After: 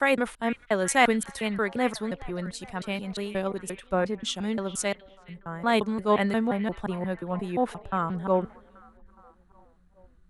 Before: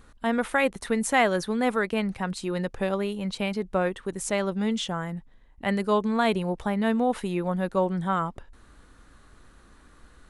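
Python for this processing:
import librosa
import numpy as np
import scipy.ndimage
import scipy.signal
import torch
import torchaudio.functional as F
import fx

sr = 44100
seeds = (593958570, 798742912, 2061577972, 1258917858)

y = fx.block_reorder(x, sr, ms=176.0, group=4)
y = fx.echo_stepped(y, sr, ms=416, hz=2700.0, octaves=-0.7, feedback_pct=70, wet_db=-9.5)
y = fx.band_widen(y, sr, depth_pct=70)
y = F.gain(torch.from_numpy(y), -1.5).numpy()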